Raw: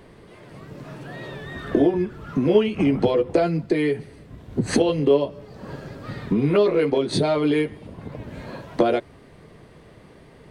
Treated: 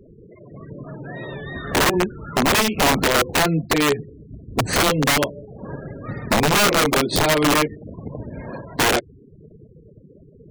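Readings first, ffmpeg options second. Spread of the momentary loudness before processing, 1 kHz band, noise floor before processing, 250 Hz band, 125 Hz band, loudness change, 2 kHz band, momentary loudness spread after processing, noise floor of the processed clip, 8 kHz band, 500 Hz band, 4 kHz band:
18 LU, +10.0 dB, −49 dBFS, −1.0 dB, +2.0 dB, +3.0 dB, +13.0 dB, 18 LU, −48 dBFS, +17.0 dB, −2.0 dB, +12.5 dB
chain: -af "aeval=exprs='(mod(5.62*val(0)+1,2)-1)/5.62':channel_layout=same,afftfilt=real='re*gte(hypot(re,im),0.0158)':imag='im*gte(hypot(re,im),0.0158)':win_size=1024:overlap=0.75,volume=3.5dB"

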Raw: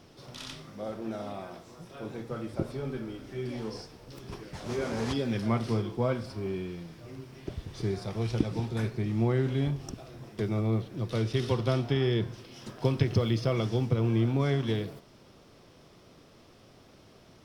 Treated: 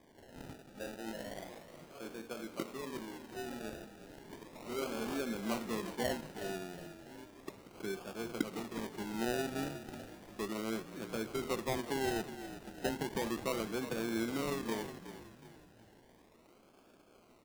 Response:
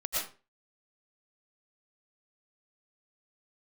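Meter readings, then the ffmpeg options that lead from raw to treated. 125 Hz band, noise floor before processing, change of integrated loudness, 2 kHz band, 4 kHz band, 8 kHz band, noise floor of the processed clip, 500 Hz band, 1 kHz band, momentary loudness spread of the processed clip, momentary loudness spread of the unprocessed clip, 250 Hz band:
−20.0 dB, −56 dBFS, −8.5 dB, −1.5 dB, −5.0 dB, +3.0 dB, −63 dBFS, −6.5 dB, −2.5 dB, 15 LU, 17 LU, −7.5 dB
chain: -filter_complex "[0:a]highpass=frequency=210:width=0.5412,highpass=frequency=210:width=1.3066,acrusher=samples=32:mix=1:aa=0.000001:lfo=1:lforange=19.2:lforate=0.34,asplit=2[link_01][link_02];[link_02]asplit=4[link_03][link_04][link_05][link_06];[link_03]adelay=367,afreqshift=-38,volume=-12dB[link_07];[link_04]adelay=734,afreqshift=-76,volume=-19.5dB[link_08];[link_05]adelay=1101,afreqshift=-114,volume=-27.1dB[link_09];[link_06]adelay=1468,afreqshift=-152,volume=-34.6dB[link_10];[link_07][link_08][link_09][link_10]amix=inputs=4:normalize=0[link_11];[link_01][link_11]amix=inputs=2:normalize=0,volume=-6dB"

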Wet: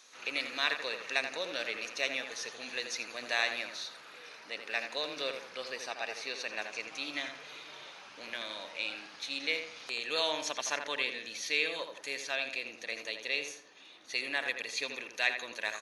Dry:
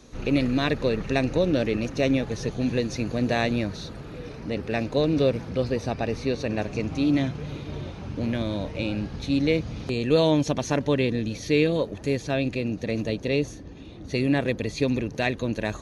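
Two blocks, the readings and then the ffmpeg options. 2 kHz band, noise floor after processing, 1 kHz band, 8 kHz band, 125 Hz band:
0.0 dB, −53 dBFS, −7.0 dB, can't be measured, −38.0 dB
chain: -filter_complex "[0:a]highpass=1300,asplit=2[link_01][link_02];[link_02]adelay=83,lowpass=frequency=2400:poles=1,volume=-6.5dB,asplit=2[link_03][link_04];[link_04]adelay=83,lowpass=frequency=2400:poles=1,volume=0.38,asplit=2[link_05][link_06];[link_06]adelay=83,lowpass=frequency=2400:poles=1,volume=0.38,asplit=2[link_07][link_08];[link_08]adelay=83,lowpass=frequency=2400:poles=1,volume=0.38[link_09];[link_03][link_05][link_07][link_09]amix=inputs=4:normalize=0[link_10];[link_01][link_10]amix=inputs=2:normalize=0"

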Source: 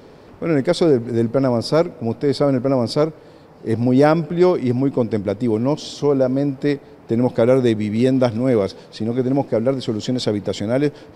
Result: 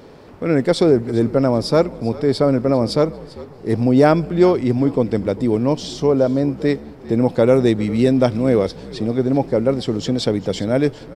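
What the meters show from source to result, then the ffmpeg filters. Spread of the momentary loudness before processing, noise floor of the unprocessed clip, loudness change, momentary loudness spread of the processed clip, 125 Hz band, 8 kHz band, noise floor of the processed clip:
7 LU, −44 dBFS, +1.0 dB, 7 LU, +1.0 dB, can't be measured, −40 dBFS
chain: -filter_complex "[0:a]asplit=4[link_01][link_02][link_03][link_04];[link_02]adelay=397,afreqshift=-67,volume=-18.5dB[link_05];[link_03]adelay=794,afreqshift=-134,volume=-27.9dB[link_06];[link_04]adelay=1191,afreqshift=-201,volume=-37.2dB[link_07];[link_01][link_05][link_06][link_07]amix=inputs=4:normalize=0,volume=1dB"

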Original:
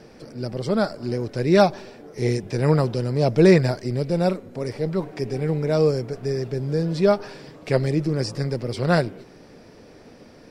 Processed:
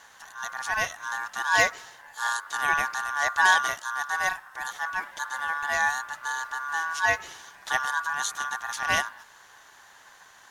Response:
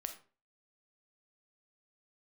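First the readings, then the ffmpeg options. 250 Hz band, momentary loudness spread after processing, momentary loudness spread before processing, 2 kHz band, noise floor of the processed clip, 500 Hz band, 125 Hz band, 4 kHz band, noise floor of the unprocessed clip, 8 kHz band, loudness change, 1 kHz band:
−28.5 dB, 12 LU, 12 LU, +10.0 dB, −53 dBFS, −18.0 dB, −29.0 dB, +1.5 dB, −48 dBFS, +9.5 dB, −4.5 dB, +4.0 dB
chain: -af "aeval=exprs='val(0)*sin(2*PI*1300*n/s)':channel_layout=same,crystalizer=i=4:c=0,volume=-6dB"

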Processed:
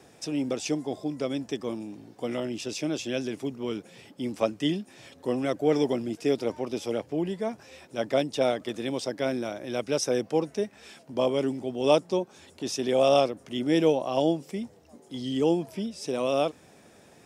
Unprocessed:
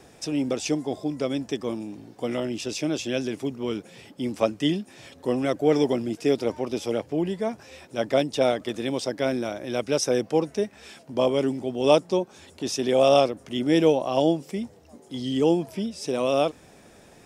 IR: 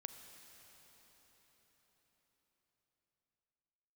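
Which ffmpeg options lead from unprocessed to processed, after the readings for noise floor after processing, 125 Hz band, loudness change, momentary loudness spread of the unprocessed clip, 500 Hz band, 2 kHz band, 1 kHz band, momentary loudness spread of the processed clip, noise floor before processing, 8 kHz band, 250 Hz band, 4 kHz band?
−56 dBFS, −3.5 dB, −3.0 dB, 12 LU, −3.0 dB, −3.0 dB, −3.0 dB, 12 LU, −52 dBFS, −3.0 dB, −3.0 dB, −3.0 dB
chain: -af "highpass=81,volume=-3dB"

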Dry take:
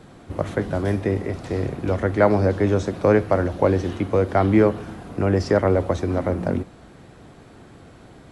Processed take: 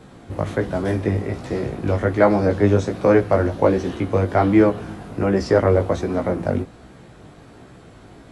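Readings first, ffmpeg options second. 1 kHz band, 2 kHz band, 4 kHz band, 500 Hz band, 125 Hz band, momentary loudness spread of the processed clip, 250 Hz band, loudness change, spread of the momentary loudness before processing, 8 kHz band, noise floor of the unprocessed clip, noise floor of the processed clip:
+1.5 dB, +1.5 dB, +1.5 dB, +1.5 dB, +1.0 dB, 10 LU, +2.0 dB, +1.5 dB, 9 LU, can't be measured, −47 dBFS, −45 dBFS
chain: -af "flanger=delay=15.5:depth=4.1:speed=1.3,volume=4.5dB"

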